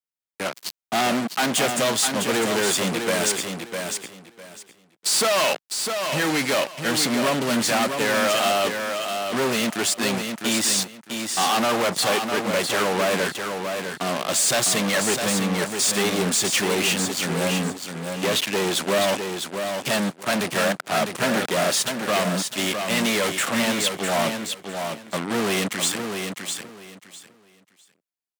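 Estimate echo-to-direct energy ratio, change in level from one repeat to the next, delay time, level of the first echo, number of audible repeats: −6.0 dB, −13.5 dB, 654 ms, −6.0 dB, 3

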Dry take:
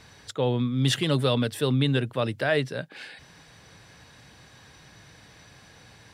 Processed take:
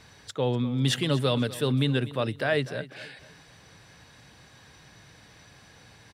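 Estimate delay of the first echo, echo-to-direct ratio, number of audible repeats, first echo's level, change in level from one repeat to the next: 246 ms, −16.5 dB, 3, −17.0 dB, −9.0 dB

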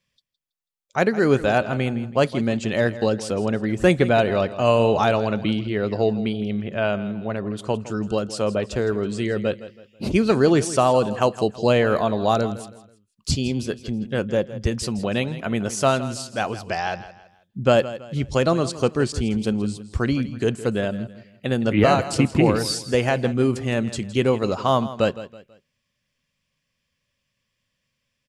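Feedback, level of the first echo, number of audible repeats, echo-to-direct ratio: 35%, −15.0 dB, 3, −14.5 dB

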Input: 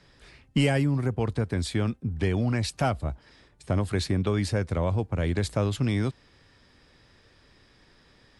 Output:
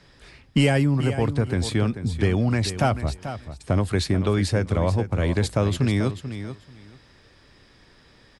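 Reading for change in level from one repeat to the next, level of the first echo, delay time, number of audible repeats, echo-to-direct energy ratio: −15.0 dB, −11.0 dB, 438 ms, 2, −11.0 dB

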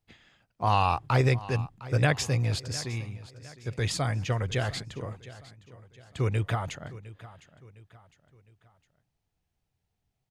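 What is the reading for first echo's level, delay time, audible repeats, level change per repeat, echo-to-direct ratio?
−17.5 dB, 708 ms, 3, −7.5 dB, −16.5 dB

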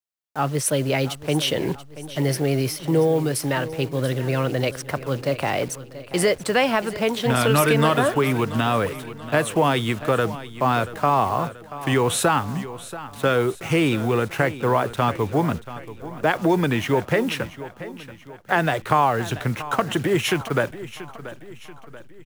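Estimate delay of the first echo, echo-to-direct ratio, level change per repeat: 683 ms, −14.0 dB, −6.5 dB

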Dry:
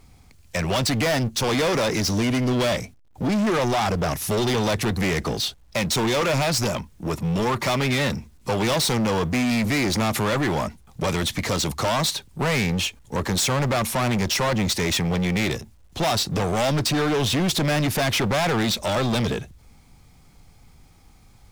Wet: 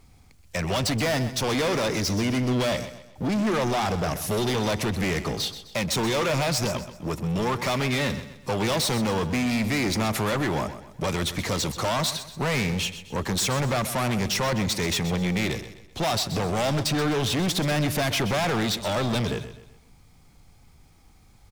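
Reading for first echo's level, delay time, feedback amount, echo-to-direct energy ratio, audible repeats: −12.5 dB, 128 ms, 39%, −12.0 dB, 3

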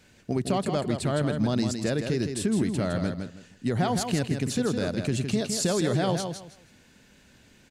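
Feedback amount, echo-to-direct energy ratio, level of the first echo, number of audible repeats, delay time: 23%, −6.5 dB, −6.5 dB, 3, 161 ms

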